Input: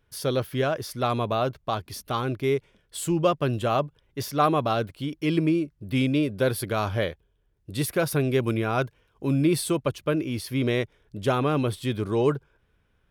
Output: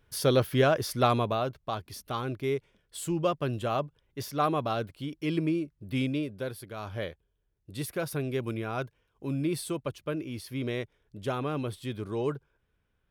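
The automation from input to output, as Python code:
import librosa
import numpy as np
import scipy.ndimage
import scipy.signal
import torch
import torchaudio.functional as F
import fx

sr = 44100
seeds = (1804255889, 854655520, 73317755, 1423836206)

y = fx.gain(x, sr, db=fx.line((1.04, 2.0), (1.46, -5.5), (6.04, -5.5), (6.68, -15.0), (7.04, -8.0)))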